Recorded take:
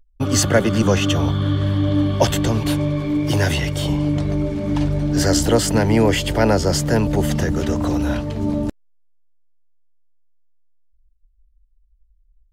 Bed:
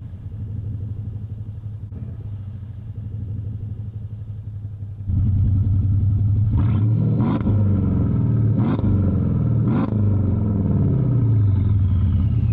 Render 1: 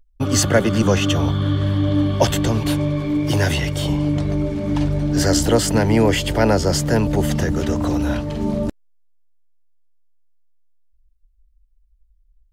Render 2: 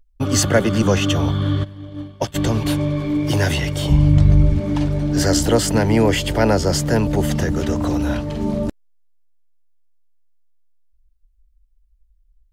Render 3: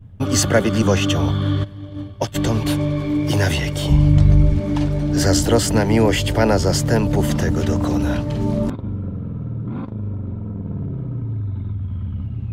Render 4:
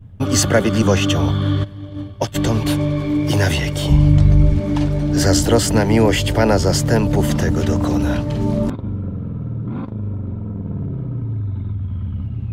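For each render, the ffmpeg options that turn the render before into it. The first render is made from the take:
-filter_complex "[0:a]asettb=1/sr,asplit=3[a][b][c];[a]atrim=end=8.244[d];[b]atrim=start=8.24:end=8.68,asetpts=PTS-STARTPTS,afade=t=in:d=0.004:c=qsin,afade=t=out:st=0.436:d=0.004:c=qsin,asplit=2[e][f];[f]adelay=46,volume=-4dB[g];[e][g]amix=inputs=2:normalize=0,atrim=end_sample=19404[h];[c]atrim=start=8.676[i];[d][h]acrossfade=d=0.004:c1=hsin:c2=qsin[j];[j][i]acrossfade=d=0.004:c1=qsin:c2=hsin"
-filter_complex "[0:a]asplit=3[a][b][c];[a]afade=t=out:st=1.63:d=0.02[d];[b]agate=range=-33dB:threshold=-8dB:ratio=3:release=100:detection=peak,afade=t=in:st=1.63:d=0.02,afade=t=out:st=2.34:d=0.02[e];[c]afade=t=in:st=2.34:d=0.02[f];[d][e][f]amix=inputs=3:normalize=0,asplit=3[g][h][i];[g]afade=t=out:st=3.9:d=0.02[j];[h]asubboost=boost=6.5:cutoff=140,afade=t=in:st=3.9:d=0.02,afade=t=out:st=4.59:d=0.02[k];[i]afade=t=in:st=4.59:d=0.02[l];[j][k][l]amix=inputs=3:normalize=0"
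-filter_complex "[1:a]volume=-8dB[a];[0:a][a]amix=inputs=2:normalize=0"
-af "volume=1.5dB,alimiter=limit=-3dB:level=0:latency=1"

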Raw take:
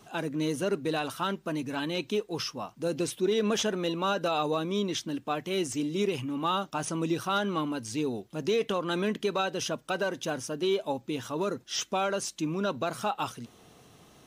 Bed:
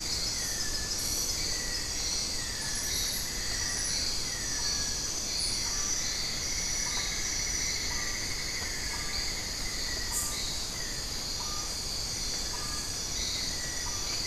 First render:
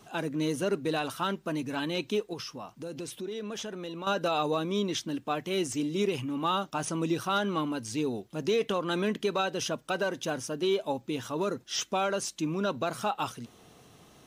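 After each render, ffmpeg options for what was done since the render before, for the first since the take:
-filter_complex "[0:a]asettb=1/sr,asplit=3[a][b][c];[a]atrim=end=2.334[d];[b]atrim=start=2.33:end=4.07,asetpts=PTS-STARTPTS,afade=t=in:d=0.004:c=qsin,afade=t=out:st=1.736:d=0.004:c=qsin,acompressor=threshold=-37dB:ratio=3:attack=3.2:release=140:knee=1:detection=peak[e];[c]atrim=start=4.066[f];[d][e]acrossfade=d=0.004:c1=hsin:c2=qsin[g];[g][f]acrossfade=d=0.004:c1=qsin:c2=hsin"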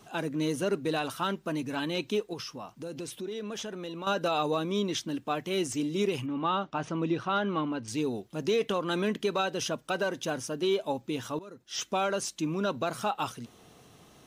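-filter_complex "[0:a]asettb=1/sr,asplit=3[a][b][c];[a]atrim=end=6.264[d];[b]atrim=start=6.26:end=7.88,asetpts=PTS-STARTPTS,afade=t=in:d=0.004:c=qsin,afade=t=out:st=1.616:d=0.004:c=qsin,lowpass=3.1k[e];[c]atrim=start=7.876[f];[d][e]acrossfade=d=0.004:c1=hsin:c2=qsin[g];[g][f]acrossfade=d=0.004:c1=qsin:c2=hsin,asplit=2[h][i];[h]atrim=end=11.39,asetpts=PTS-STARTPTS,afade=t=out:st=11.386:d=0.004:c=hsin:silence=0.125893[j];[i]atrim=start=11.39,asetpts=PTS-STARTPTS,afade=t=in:d=0.47:c=qua:silence=0.125893[k];[j][k]concat=n=2:v=0:a=1"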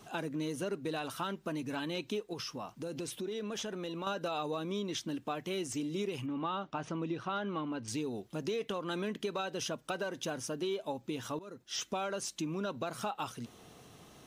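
-af "acompressor=threshold=-35dB:ratio=3"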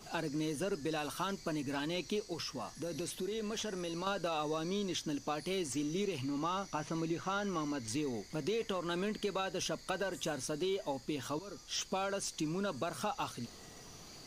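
-filter_complex "[1:a]volume=-22dB[a];[0:a][a]amix=inputs=2:normalize=0"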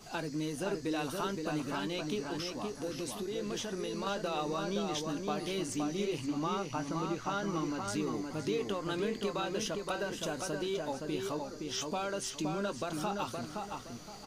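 -filter_complex "[0:a]asplit=2[a][b];[b]adelay=20,volume=-13dB[c];[a][c]amix=inputs=2:normalize=0,asplit=2[d][e];[e]adelay=519,lowpass=f=2.5k:p=1,volume=-3.5dB,asplit=2[f][g];[g]adelay=519,lowpass=f=2.5k:p=1,volume=0.32,asplit=2[h][i];[i]adelay=519,lowpass=f=2.5k:p=1,volume=0.32,asplit=2[j][k];[k]adelay=519,lowpass=f=2.5k:p=1,volume=0.32[l];[d][f][h][j][l]amix=inputs=5:normalize=0"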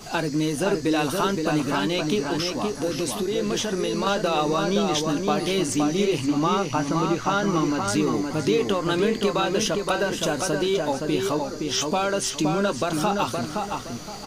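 -af "volume=12dB"

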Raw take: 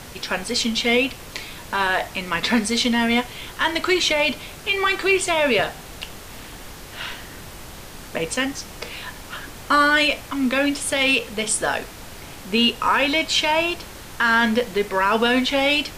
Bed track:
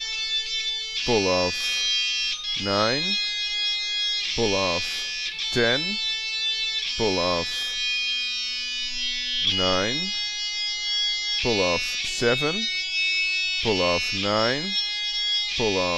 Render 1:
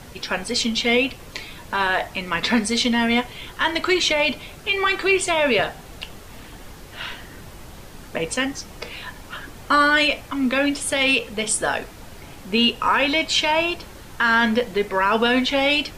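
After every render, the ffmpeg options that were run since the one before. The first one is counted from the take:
-af "afftdn=nr=6:nf=-39"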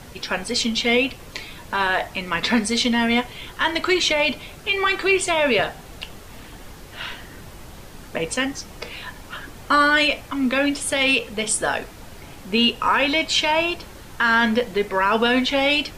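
-af anull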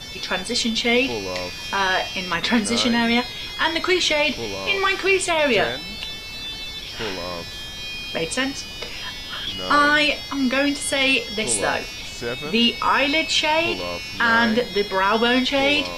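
-filter_complex "[1:a]volume=-6.5dB[a];[0:a][a]amix=inputs=2:normalize=0"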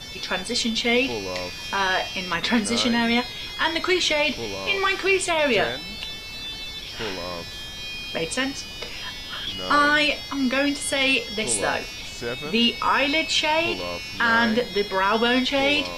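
-af "volume=-2dB"

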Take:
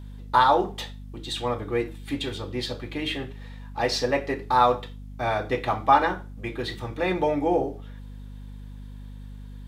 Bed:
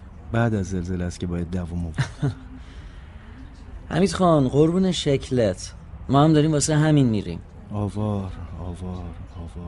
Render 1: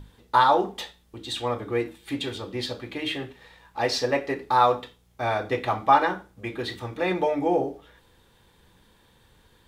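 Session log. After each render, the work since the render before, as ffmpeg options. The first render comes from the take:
-af "bandreject=f=50:t=h:w=6,bandreject=f=100:t=h:w=6,bandreject=f=150:t=h:w=6,bandreject=f=200:t=h:w=6,bandreject=f=250:t=h:w=6,bandreject=f=300:t=h:w=6"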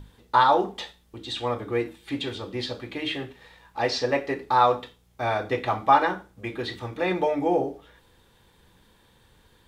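-filter_complex "[0:a]acrossover=split=6800[a][b];[b]acompressor=threshold=-60dB:ratio=4:attack=1:release=60[c];[a][c]amix=inputs=2:normalize=0"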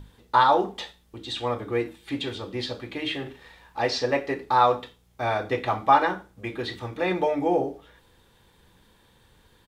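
-filter_complex "[0:a]asplit=3[a][b][c];[a]afade=t=out:st=3.25:d=0.02[d];[b]asplit=2[e][f];[f]adelay=37,volume=-5dB[g];[e][g]amix=inputs=2:normalize=0,afade=t=in:st=3.25:d=0.02,afade=t=out:st=3.8:d=0.02[h];[c]afade=t=in:st=3.8:d=0.02[i];[d][h][i]amix=inputs=3:normalize=0"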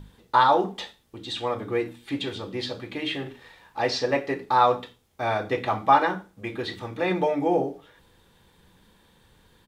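-af "equalizer=f=180:t=o:w=0.6:g=5,bandreject=f=60:t=h:w=6,bandreject=f=120:t=h:w=6,bandreject=f=180:t=h:w=6,bandreject=f=240:t=h:w=6"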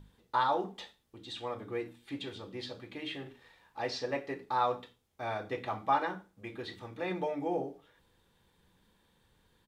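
-af "volume=-10.5dB"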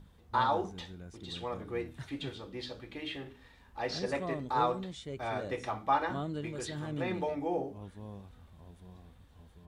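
-filter_complex "[1:a]volume=-21dB[a];[0:a][a]amix=inputs=2:normalize=0"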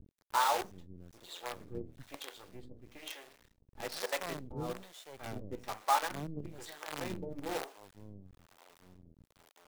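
-filter_complex "[0:a]acrusher=bits=6:dc=4:mix=0:aa=0.000001,acrossover=split=430[a][b];[a]aeval=exprs='val(0)*(1-1/2+1/2*cos(2*PI*1.1*n/s))':c=same[c];[b]aeval=exprs='val(0)*(1-1/2-1/2*cos(2*PI*1.1*n/s))':c=same[d];[c][d]amix=inputs=2:normalize=0"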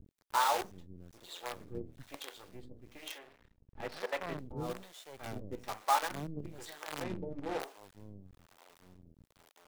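-filter_complex "[0:a]asettb=1/sr,asplit=3[a][b][c];[a]atrim=end=3.184[d];[b]atrim=start=3.18:end=4.39,asetpts=PTS-STARTPTS,afade=t=in:d=0.004:c=qsin,afade=t=out:st=1.206:d=0.004:c=qsin,bass=f=250:g=3,treble=f=4k:g=-14[e];[c]atrim=start=4.386[f];[d][e]acrossfade=d=0.004:c1=hsin:c2=qsin[g];[g][f]acrossfade=d=0.004:c1=qsin:c2=hsin,asplit=3[h][i][j];[h]afade=t=out:st=7.02:d=0.02[k];[i]aemphasis=mode=reproduction:type=75fm,afade=t=in:st=7.02:d=0.02,afade=t=out:st=7.59:d=0.02[l];[j]afade=t=in:st=7.59:d=0.02[m];[k][l][m]amix=inputs=3:normalize=0"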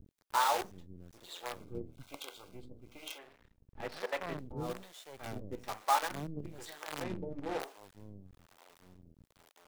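-filter_complex "[0:a]asettb=1/sr,asplit=3[a][b][c];[a]atrim=end=1.594[d];[b]atrim=start=1.59:end=3.19,asetpts=PTS-STARTPTS,afade=t=in:d=0.004:c=qsin,afade=t=out:st=1.596:d=0.004:c=qsin,asuperstop=centerf=1800:order=12:qfactor=4.5[e];[c]atrim=start=3.186[f];[d][e]acrossfade=d=0.004:c1=hsin:c2=qsin[g];[g][f]acrossfade=d=0.004:c1=qsin:c2=hsin"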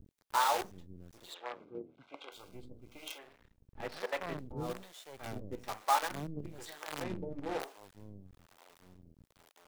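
-filter_complex "[0:a]asettb=1/sr,asplit=3[a][b][c];[a]atrim=end=1.344[d];[b]atrim=start=1.34:end=2.32,asetpts=PTS-STARTPTS,afade=t=in:d=0.004:c=qsin,afade=t=out:st=0.976:d=0.004:c=qsin,highpass=270,lowpass=2.5k[e];[c]atrim=start=2.316[f];[d][e]acrossfade=d=0.004:c1=hsin:c2=qsin[g];[g][f]acrossfade=d=0.004:c1=qsin:c2=hsin"

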